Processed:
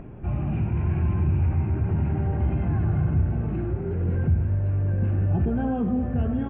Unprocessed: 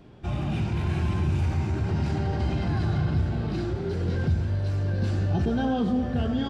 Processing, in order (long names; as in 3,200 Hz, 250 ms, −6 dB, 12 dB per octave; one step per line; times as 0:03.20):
elliptic low-pass filter 2,600 Hz, stop band 60 dB
spectral tilt −2 dB per octave
upward compression, threshold −29 dBFS
level −3 dB